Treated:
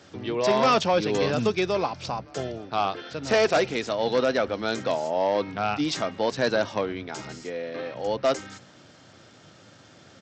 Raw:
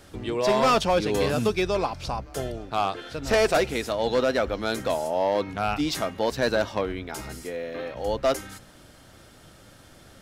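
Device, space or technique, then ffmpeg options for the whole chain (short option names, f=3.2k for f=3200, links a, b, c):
Bluetooth headset: -af "highpass=f=100:w=0.5412,highpass=f=100:w=1.3066,aresample=16000,aresample=44100" -ar 32000 -c:a sbc -b:a 64k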